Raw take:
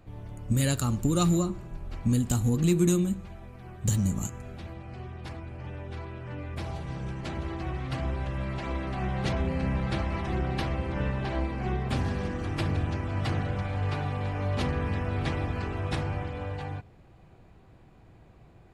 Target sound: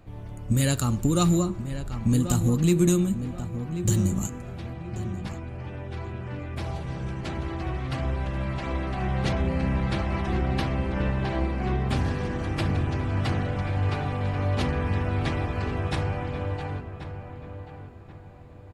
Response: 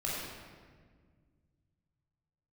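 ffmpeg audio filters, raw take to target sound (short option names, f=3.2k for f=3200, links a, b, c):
-filter_complex "[0:a]asplit=2[a][b];[b]adelay=1084,lowpass=f=2.1k:p=1,volume=-10dB,asplit=2[c][d];[d]adelay=1084,lowpass=f=2.1k:p=1,volume=0.36,asplit=2[e][f];[f]adelay=1084,lowpass=f=2.1k:p=1,volume=0.36,asplit=2[g][h];[h]adelay=1084,lowpass=f=2.1k:p=1,volume=0.36[i];[a][c][e][g][i]amix=inputs=5:normalize=0,volume=2.5dB"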